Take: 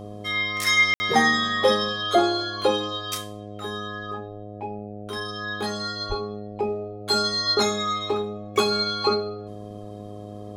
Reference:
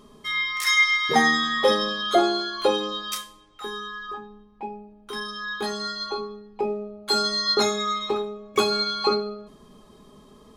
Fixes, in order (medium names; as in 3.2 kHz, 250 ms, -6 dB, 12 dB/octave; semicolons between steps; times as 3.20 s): de-hum 103.5 Hz, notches 7; 6.08–6.20 s: high-pass 140 Hz 24 dB/octave; room tone fill 0.94–1.00 s